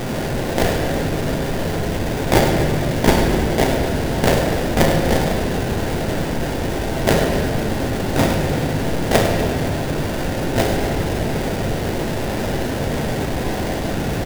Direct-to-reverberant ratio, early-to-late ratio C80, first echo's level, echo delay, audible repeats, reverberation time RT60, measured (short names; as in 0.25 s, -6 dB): 1.0 dB, 3.5 dB, -10.0 dB, 0.101 s, 2, 2.0 s